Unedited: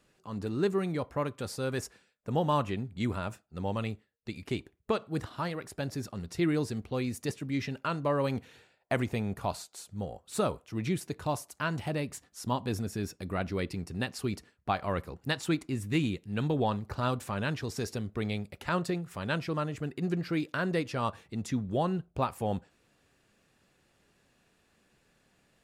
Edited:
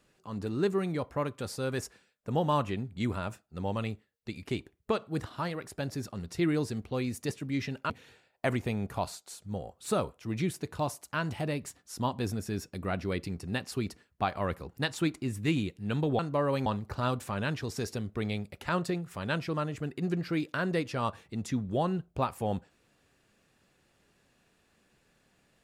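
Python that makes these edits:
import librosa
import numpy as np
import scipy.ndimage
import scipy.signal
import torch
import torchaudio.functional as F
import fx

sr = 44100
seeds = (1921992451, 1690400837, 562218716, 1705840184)

y = fx.edit(x, sr, fx.move(start_s=7.9, length_s=0.47, to_s=16.66), tone=tone)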